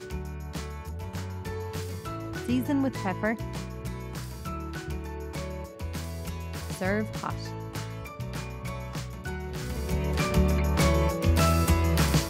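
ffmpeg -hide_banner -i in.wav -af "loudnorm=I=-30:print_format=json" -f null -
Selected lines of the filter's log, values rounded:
"input_i" : "-28.8",
"input_tp" : "-12.1",
"input_lra" : "9.2",
"input_thresh" : "-38.8",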